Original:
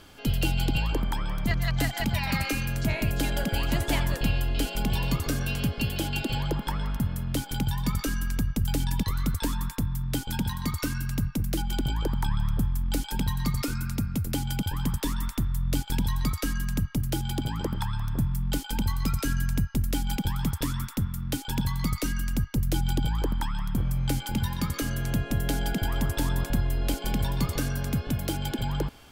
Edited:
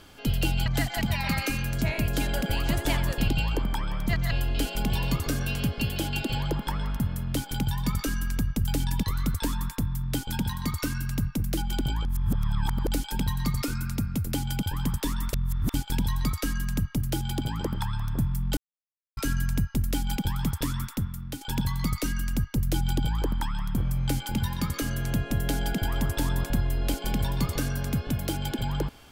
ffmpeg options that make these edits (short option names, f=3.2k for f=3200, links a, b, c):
-filter_complex "[0:a]asplit=11[a][b][c][d][e][f][g][h][i][j][k];[a]atrim=end=0.662[l];[b]atrim=start=1.688:end=4.312[m];[c]atrim=start=0.658:end=1.692[n];[d]atrim=start=4.308:end=12.052[o];[e]atrim=start=12.048:end=12.872,asetpts=PTS-STARTPTS,areverse[p];[f]atrim=start=12.868:end=15.332[q];[g]atrim=start=15.328:end=15.742,asetpts=PTS-STARTPTS,areverse[r];[h]atrim=start=15.738:end=18.57,asetpts=PTS-STARTPTS,afade=t=out:st=2.828:d=0.004:c=hsin[s];[i]atrim=start=18.57:end=19.17,asetpts=PTS-STARTPTS,volume=0[t];[j]atrim=start=19.17:end=21.41,asetpts=PTS-STARTPTS,afade=t=in:d=0.004:c=hsin,afade=t=out:st=1.71:d=0.53:silence=0.398107[u];[k]atrim=start=21.41,asetpts=PTS-STARTPTS,afade=t=in:d=0.004:c=hsin:silence=0.398107[v];[l][m]acrossfade=d=0.004:c1=hsin:c2=hsin[w];[w][n]acrossfade=d=0.004:c1=hsin:c2=hsin[x];[x][o]acrossfade=d=0.004:c1=hsin:c2=hsin[y];[y][p]acrossfade=d=0.004:c1=hsin:c2=hsin[z];[z][q]acrossfade=d=0.004:c1=hsin:c2=hsin[aa];[aa][r]acrossfade=d=0.004:c1=hsin:c2=hsin[ab];[s][t][u][v]concat=n=4:v=0:a=1[ac];[ab][ac]acrossfade=d=0.004:c1=hsin:c2=hsin"